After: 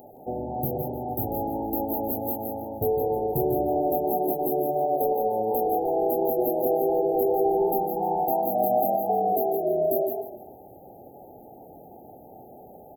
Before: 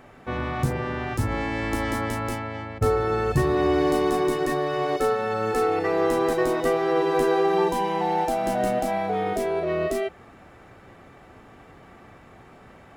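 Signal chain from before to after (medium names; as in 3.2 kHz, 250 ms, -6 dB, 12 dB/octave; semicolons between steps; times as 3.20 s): RIAA curve recording; spectral gate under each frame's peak -30 dB strong; in parallel at +1 dB: compression, threshold -33 dBFS, peak gain reduction 12.5 dB; on the sum: hard clipper -16.5 dBFS, distortion -20 dB; brick-wall FIR band-stop 870–12000 Hz; delay 169 ms -7 dB; modulated delay 151 ms, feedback 39%, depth 150 cents, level -11 dB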